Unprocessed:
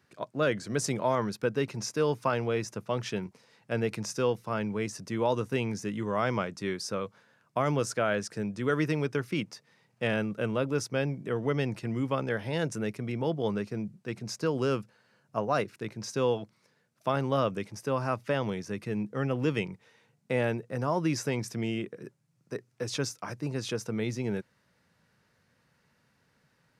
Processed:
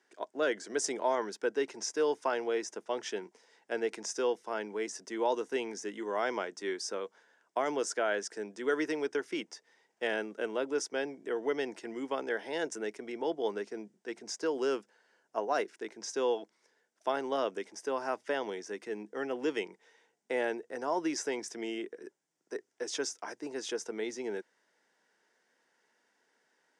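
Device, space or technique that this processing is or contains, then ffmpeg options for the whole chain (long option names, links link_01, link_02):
phone speaker on a table: -af "highpass=frequency=340:width=0.5412,highpass=frequency=340:width=1.3066,equalizer=frequency=550:width_type=q:width=4:gain=-7,equalizer=frequency=1200:width_type=q:width=4:gain=-10,equalizer=frequency=2500:width_type=q:width=4:gain=-8,equalizer=frequency=4200:width_type=q:width=4:gain=-9,lowpass=frequency=8600:width=0.5412,lowpass=frequency=8600:width=1.3066,volume=1.5dB"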